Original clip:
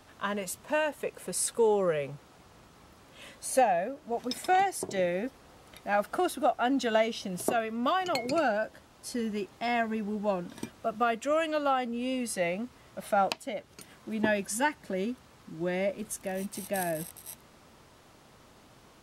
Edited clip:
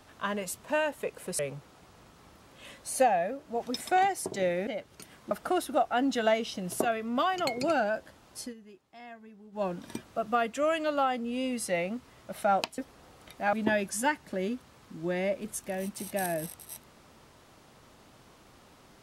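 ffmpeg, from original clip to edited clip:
-filter_complex "[0:a]asplit=8[a][b][c][d][e][f][g][h];[a]atrim=end=1.392[i];[b]atrim=start=1.958:end=5.242[j];[c]atrim=start=13.458:end=14.102[k];[d]atrim=start=5.988:end=9.22,asetpts=PTS-STARTPTS,afade=t=out:st=3.092:d=0.14:silence=0.11885[l];[e]atrim=start=9.22:end=10.2,asetpts=PTS-STARTPTS,volume=-18.5dB[m];[f]atrim=start=10.2:end=13.462,asetpts=PTS-STARTPTS,afade=t=in:d=0.14:silence=0.11885[n];[g]atrim=start=5.238:end=5.992[o];[h]atrim=start=14.098[p];[i][j]acrossfade=d=0.004:c1=hsin:c2=hsin[q];[q][k]acrossfade=d=0.004:c1=hsin:c2=hsin[r];[l][m][n]concat=n=3:v=0:a=1[s];[r][s]acrossfade=d=0.004:c1=hsin:c2=hsin[t];[t][o]acrossfade=d=0.004:c1=hsin:c2=hsin[u];[u][p]acrossfade=d=0.004:c1=hsin:c2=hsin"

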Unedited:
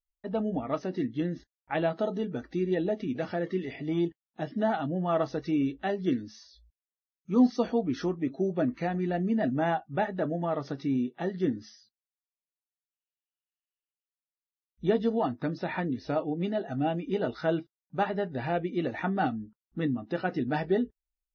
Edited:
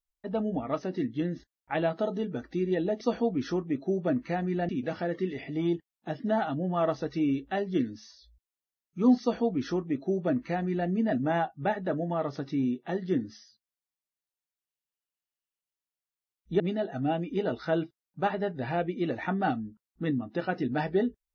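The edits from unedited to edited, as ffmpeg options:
-filter_complex "[0:a]asplit=4[a][b][c][d];[a]atrim=end=3.012[e];[b]atrim=start=7.528:end=9.212[f];[c]atrim=start=3.008:end=14.922[g];[d]atrim=start=16.358[h];[e][f]acrossfade=d=0.004:c1=hsin:c2=hsin[i];[i][g]acrossfade=d=0.004:c1=hsin:c2=hsin[j];[j][h]acrossfade=d=0.004:c1=hsin:c2=hsin"

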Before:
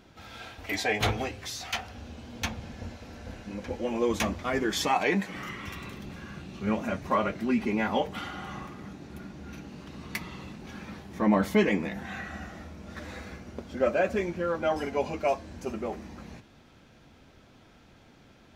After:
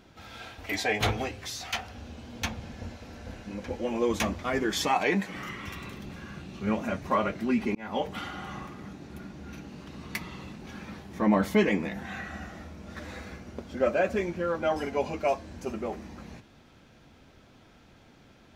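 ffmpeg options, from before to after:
-filter_complex "[0:a]asplit=2[a][b];[a]atrim=end=7.75,asetpts=PTS-STARTPTS,afade=t=out:st=7.746:d=0.004:c=hsin[c];[b]atrim=start=7.75,asetpts=PTS-STARTPTS,afade=t=in:d=0.32[d];[c][d]concat=n=2:v=0:a=1"

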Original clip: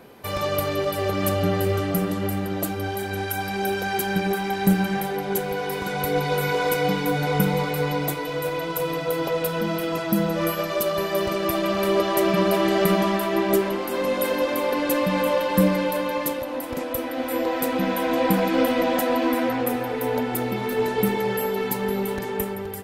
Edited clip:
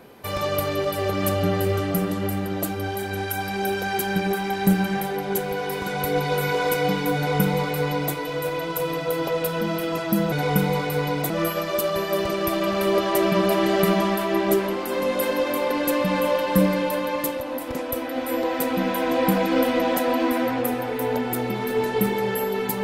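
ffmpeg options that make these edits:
-filter_complex "[0:a]asplit=3[a][b][c];[a]atrim=end=10.322[d];[b]atrim=start=7.158:end=8.142[e];[c]atrim=start=10.318[f];[d][e]acrossfade=d=0.004:c1=hsin:c2=hsin[g];[g][f]acrossfade=d=0.004:c1=hsin:c2=hsin"

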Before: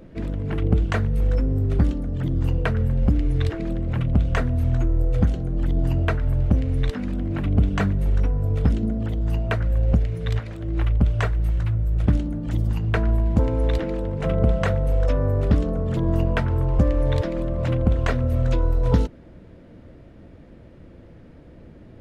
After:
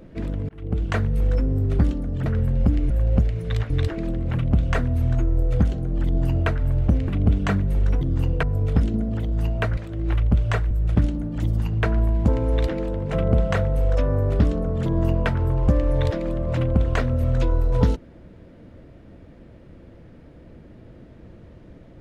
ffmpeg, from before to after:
-filter_complex "[0:a]asplit=10[a][b][c][d][e][f][g][h][i][j];[a]atrim=end=0.49,asetpts=PTS-STARTPTS,afade=t=out:st=0.486:d=0.004:c=hsin[k];[b]atrim=start=0.49:end=2.262,asetpts=PTS-STARTPTS,afade=t=in:d=0.48[l];[c]atrim=start=2.678:end=3.322[m];[d]atrim=start=9.658:end=10.462[n];[e]atrim=start=3.318:end=6.702[o];[f]atrim=start=7.388:end=8.322[p];[g]atrim=start=2.258:end=2.682[q];[h]atrim=start=8.318:end=9.662[r];[i]atrim=start=10.458:end=11.402[s];[j]atrim=start=11.818[t];[k][l]concat=n=2:v=0:a=1[u];[u][m]acrossfade=d=0.004:c1=hsin:c2=hsin[v];[v][n]acrossfade=d=0.004:c1=hsin:c2=hsin[w];[w][o]acrossfade=d=0.004:c1=hsin:c2=hsin[x];[x][p]acrossfade=d=0.004:c1=hsin:c2=hsin[y];[y][q]acrossfade=d=0.004:c1=hsin:c2=hsin[z];[z][r]acrossfade=d=0.004:c1=hsin:c2=hsin[aa];[aa][s]acrossfade=d=0.004:c1=hsin:c2=hsin[ab];[ab][t]acrossfade=d=0.004:c1=hsin:c2=hsin"

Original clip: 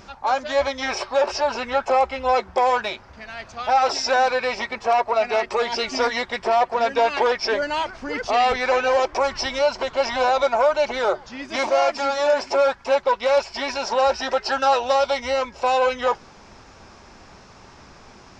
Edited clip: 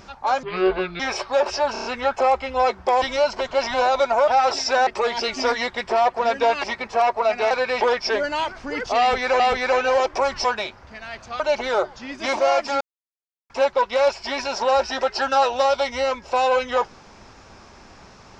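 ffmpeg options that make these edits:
-filter_complex "[0:a]asplit=18[a][b][c][d][e][f][g][h][i][j][k][l][m][n][o][p][q][r];[a]atrim=end=0.434[s];[b]atrim=start=0.43:end=0.81,asetpts=PTS-STARTPTS,asetrate=29547,aresample=44100[t];[c]atrim=start=0.806:end=1.572[u];[d]atrim=start=1.538:end=1.572[v];[e]atrim=start=1.538:end=1.572[w];[f]atrim=start=1.538:end=1.572[x];[g]atrim=start=1.538:end=2.712[y];[h]atrim=start=9.438:end=10.702[z];[i]atrim=start=3.658:end=4.252[aa];[j]atrim=start=5.418:end=7.192[ab];[k]atrim=start=4.548:end=5.422[ac];[l]atrim=start=4.248:end=4.552[ad];[m]atrim=start=7.188:end=8.782[ae];[n]atrim=start=8.388:end=9.442[af];[o]atrim=start=2.708:end=3.662[ag];[p]atrim=start=10.698:end=12.11,asetpts=PTS-STARTPTS,afade=t=out:st=1.408:d=0.004:c=hsin[ah];[q]atrim=start=12.11:end=12.8,asetpts=PTS-STARTPTS,volume=0[ai];[r]atrim=start=12.8,asetpts=PTS-STARTPTS,afade=t=in:d=0.004:c=hsin[aj];[s][t]acrossfade=d=0.004:c1=hsin:c2=hsin[ak];[ak][u]acrossfade=d=0.004:c1=hsin:c2=hsin[al];[al][v]acrossfade=d=0.004:c1=hsin:c2=hsin[am];[am][w]acrossfade=d=0.004:c1=hsin:c2=hsin[an];[an][x]acrossfade=d=0.004:c1=hsin:c2=hsin[ao];[ao][y]acrossfade=d=0.004:c1=hsin:c2=hsin[ap];[ap][z]acrossfade=d=0.004:c1=hsin:c2=hsin[aq];[aq][aa]acrossfade=d=0.004:c1=hsin:c2=hsin[ar];[ar][ab]acrossfade=d=0.004:c1=hsin:c2=hsin[as];[as][ac]acrossfade=d=0.004:c1=hsin:c2=hsin[at];[at][ad]acrossfade=d=0.004:c1=hsin:c2=hsin[au];[au][ae]acrossfade=d=0.004:c1=hsin:c2=hsin[av];[av][af]acrossfade=d=0.004:c1=hsin:c2=hsin[aw];[aw][ag]acrossfade=d=0.004:c1=hsin:c2=hsin[ax];[ah][ai][aj]concat=n=3:v=0:a=1[ay];[ax][ay]acrossfade=d=0.004:c1=hsin:c2=hsin"

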